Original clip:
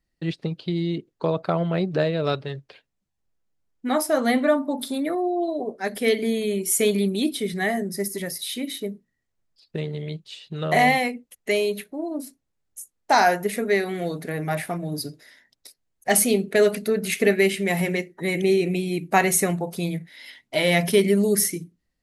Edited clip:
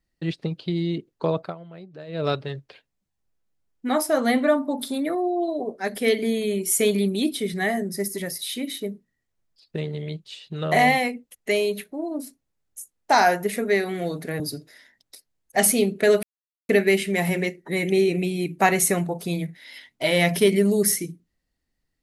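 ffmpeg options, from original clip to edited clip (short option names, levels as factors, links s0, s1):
-filter_complex "[0:a]asplit=6[s0][s1][s2][s3][s4][s5];[s0]atrim=end=1.55,asetpts=PTS-STARTPTS,afade=t=out:st=1.38:d=0.17:silence=0.11885[s6];[s1]atrim=start=1.55:end=2.07,asetpts=PTS-STARTPTS,volume=0.119[s7];[s2]atrim=start=2.07:end=14.402,asetpts=PTS-STARTPTS,afade=t=in:d=0.17:silence=0.11885[s8];[s3]atrim=start=14.918:end=16.75,asetpts=PTS-STARTPTS,afade=t=out:st=1.828:d=0.004:c=hsin[s9];[s4]atrim=start=16.75:end=17.21,asetpts=PTS-STARTPTS,volume=0[s10];[s5]atrim=start=17.21,asetpts=PTS-STARTPTS,afade=t=in:d=0.004:c=hsin[s11];[s6][s7][s8]concat=n=3:v=0:a=1[s12];[s9][s10][s11]concat=n=3:v=0:a=1[s13];[s12][s13]acrossfade=d=0.004:c1=hsin:c2=hsin"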